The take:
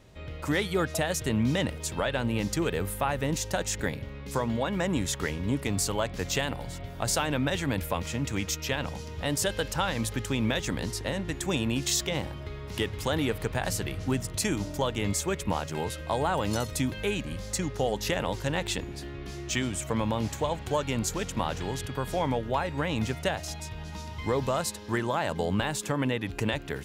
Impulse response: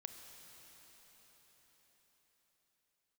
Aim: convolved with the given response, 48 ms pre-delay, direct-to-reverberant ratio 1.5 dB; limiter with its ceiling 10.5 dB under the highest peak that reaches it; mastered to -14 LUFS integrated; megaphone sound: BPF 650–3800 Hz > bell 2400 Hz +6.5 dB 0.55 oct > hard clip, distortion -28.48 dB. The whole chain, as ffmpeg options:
-filter_complex "[0:a]alimiter=limit=-23dB:level=0:latency=1,asplit=2[a][b];[1:a]atrim=start_sample=2205,adelay=48[c];[b][c]afir=irnorm=-1:irlink=0,volume=3dB[d];[a][d]amix=inputs=2:normalize=0,highpass=650,lowpass=3.8k,equalizer=f=2.4k:t=o:w=0.55:g=6.5,asoftclip=type=hard:threshold=-23.5dB,volume=21.5dB"

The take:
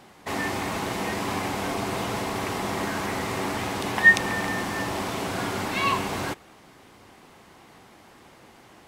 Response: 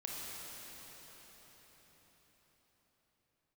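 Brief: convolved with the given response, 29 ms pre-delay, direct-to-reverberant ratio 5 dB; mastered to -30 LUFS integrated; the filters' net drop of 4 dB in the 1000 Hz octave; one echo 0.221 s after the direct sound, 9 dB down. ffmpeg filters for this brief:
-filter_complex "[0:a]equalizer=f=1k:t=o:g=-5,aecho=1:1:221:0.355,asplit=2[a][b];[1:a]atrim=start_sample=2205,adelay=29[c];[b][c]afir=irnorm=-1:irlink=0,volume=-6dB[d];[a][d]amix=inputs=2:normalize=0,volume=-4.5dB"

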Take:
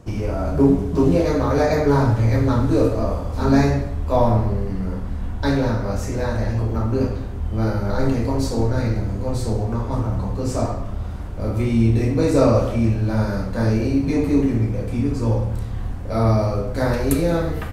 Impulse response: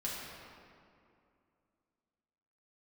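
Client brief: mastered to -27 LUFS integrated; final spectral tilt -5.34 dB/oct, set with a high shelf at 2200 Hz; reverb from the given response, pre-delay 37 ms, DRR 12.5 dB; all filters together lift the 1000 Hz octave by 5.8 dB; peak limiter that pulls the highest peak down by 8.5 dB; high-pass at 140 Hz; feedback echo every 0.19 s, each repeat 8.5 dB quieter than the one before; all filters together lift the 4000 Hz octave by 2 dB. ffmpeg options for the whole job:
-filter_complex "[0:a]highpass=140,equalizer=f=1k:t=o:g=8,highshelf=f=2.2k:g=-5,equalizer=f=4k:t=o:g=6.5,alimiter=limit=-10.5dB:level=0:latency=1,aecho=1:1:190|380|570|760:0.376|0.143|0.0543|0.0206,asplit=2[a][b];[1:a]atrim=start_sample=2205,adelay=37[c];[b][c]afir=irnorm=-1:irlink=0,volume=-15.5dB[d];[a][d]amix=inputs=2:normalize=0,volume=-5.5dB"

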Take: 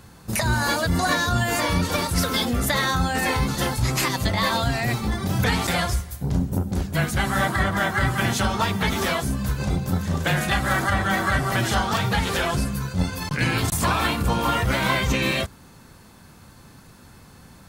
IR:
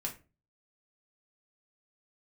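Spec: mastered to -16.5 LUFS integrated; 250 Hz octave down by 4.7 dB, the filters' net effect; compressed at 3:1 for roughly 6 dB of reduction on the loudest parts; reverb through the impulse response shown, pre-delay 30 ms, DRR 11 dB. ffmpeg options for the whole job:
-filter_complex "[0:a]equalizer=f=250:t=o:g=-7,acompressor=threshold=-26dB:ratio=3,asplit=2[a][b];[1:a]atrim=start_sample=2205,adelay=30[c];[b][c]afir=irnorm=-1:irlink=0,volume=-12dB[d];[a][d]amix=inputs=2:normalize=0,volume=11.5dB"

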